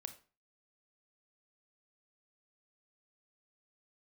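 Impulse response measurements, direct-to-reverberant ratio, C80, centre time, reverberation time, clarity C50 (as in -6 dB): 8.5 dB, 17.5 dB, 8 ms, 0.35 s, 12.5 dB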